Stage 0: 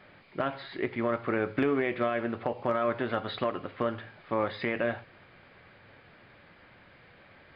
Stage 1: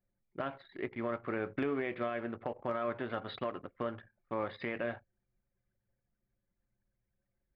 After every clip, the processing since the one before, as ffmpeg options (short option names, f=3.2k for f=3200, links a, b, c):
-af "anlmdn=0.398,volume=-7dB"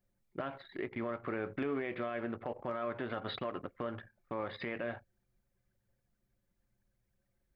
-af "alimiter=level_in=6.5dB:limit=-24dB:level=0:latency=1:release=110,volume=-6.5dB,volume=4dB"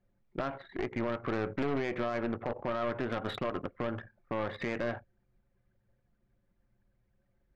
-af "adynamicsmooth=sensitivity=3:basefreq=2.8k,aeval=exprs='0.0473*(cos(1*acos(clip(val(0)/0.0473,-1,1)))-cos(1*PI/2))+0.015*(cos(4*acos(clip(val(0)/0.0473,-1,1)))-cos(4*PI/2))+0.00596*(cos(5*acos(clip(val(0)/0.0473,-1,1)))-cos(5*PI/2))+0.00422*(cos(6*acos(clip(val(0)/0.0473,-1,1)))-cos(6*PI/2))':c=same,volume=2dB"